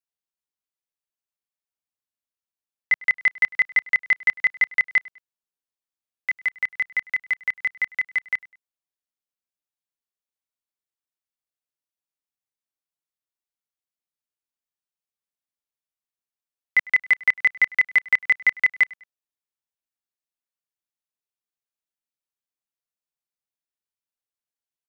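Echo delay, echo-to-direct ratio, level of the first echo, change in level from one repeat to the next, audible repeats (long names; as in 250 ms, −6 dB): 101 ms, −22.5 dB, −23.0 dB, −9.0 dB, 2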